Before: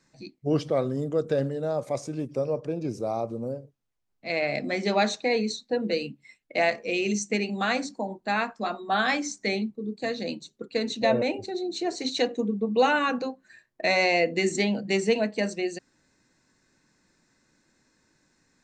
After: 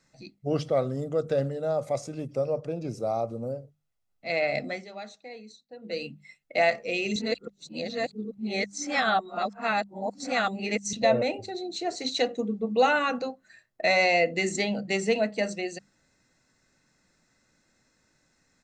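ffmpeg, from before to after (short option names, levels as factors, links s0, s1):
-filter_complex "[0:a]asplit=5[s0][s1][s2][s3][s4];[s0]atrim=end=4.87,asetpts=PTS-STARTPTS,afade=t=out:st=4.61:d=0.26:silence=0.133352[s5];[s1]atrim=start=4.87:end=5.81,asetpts=PTS-STARTPTS,volume=0.133[s6];[s2]atrim=start=5.81:end=7.162,asetpts=PTS-STARTPTS,afade=t=in:d=0.26:silence=0.133352[s7];[s3]atrim=start=7.158:end=10.932,asetpts=PTS-STARTPTS,areverse[s8];[s4]atrim=start=10.928[s9];[s5][s6][s7]concat=n=3:v=0:a=1[s10];[s10][s8]acrossfade=d=0.004:c1=hsin:c2=hsin[s11];[s11][s9]acrossfade=d=0.004:c1=hsin:c2=hsin,bandreject=f=50:t=h:w=6,bandreject=f=100:t=h:w=6,bandreject=f=150:t=h:w=6,bandreject=f=200:t=h:w=6,aecho=1:1:1.5:0.37,volume=0.891"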